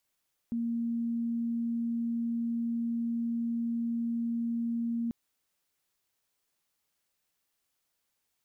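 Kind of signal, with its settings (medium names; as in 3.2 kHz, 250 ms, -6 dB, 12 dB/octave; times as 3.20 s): tone sine 233 Hz -28.5 dBFS 4.59 s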